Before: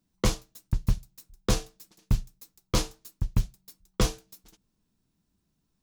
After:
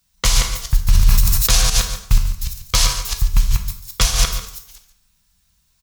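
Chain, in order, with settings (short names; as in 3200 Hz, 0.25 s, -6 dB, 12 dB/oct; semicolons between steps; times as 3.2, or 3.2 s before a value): reverse delay 0.165 s, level -2.5 dB; passive tone stack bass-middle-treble 10-0-10; echo 0.143 s -14 dB; plate-style reverb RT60 0.71 s, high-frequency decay 0.75×, DRR 4.5 dB; maximiser +20 dB; 0.85–1.7 sustainer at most 21 dB/s; gain -3 dB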